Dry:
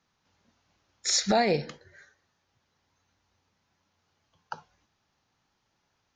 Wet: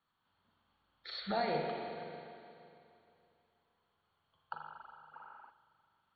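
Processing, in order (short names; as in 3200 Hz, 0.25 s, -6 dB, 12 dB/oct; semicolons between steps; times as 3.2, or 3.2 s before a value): limiter -17.5 dBFS, peak gain reduction 4 dB; rippled Chebyshev low-pass 4500 Hz, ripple 9 dB; spring tank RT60 2.7 s, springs 39/45 ms, chirp 35 ms, DRR -0.5 dB; spectral gain 5.14–5.51, 210–2900 Hz +10 dB; gain -3.5 dB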